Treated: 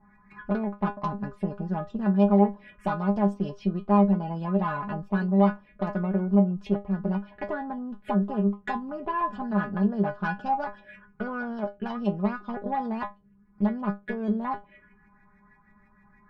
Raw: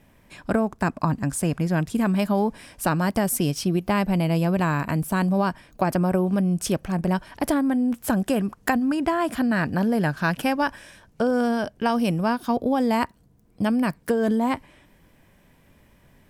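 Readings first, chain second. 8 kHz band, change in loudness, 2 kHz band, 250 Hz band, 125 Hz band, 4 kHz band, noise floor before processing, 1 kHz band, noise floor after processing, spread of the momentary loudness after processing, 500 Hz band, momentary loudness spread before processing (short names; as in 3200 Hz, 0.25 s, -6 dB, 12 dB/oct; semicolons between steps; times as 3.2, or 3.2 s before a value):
under -30 dB, -3.5 dB, -8.0 dB, -3.0 dB, -4.0 dB, under -15 dB, -58 dBFS, -3.0 dB, -60 dBFS, 11 LU, -4.0 dB, 4 LU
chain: in parallel at +1.5 dB: compressor, threshold -35 dBFS, peak gain reduction 17 dB; on the sum: LFO low-pass saw up 6.3 Hz 880–2500 Hz; envelope phaser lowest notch 490 Hz, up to 2200 Hz, full sweep at -18.5 dBFS; added harmonics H 6 -24 dB, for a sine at -5 dBFS; metallic resonator 200 Hz, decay 0.21 s, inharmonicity 0.002; gain +3.5 dB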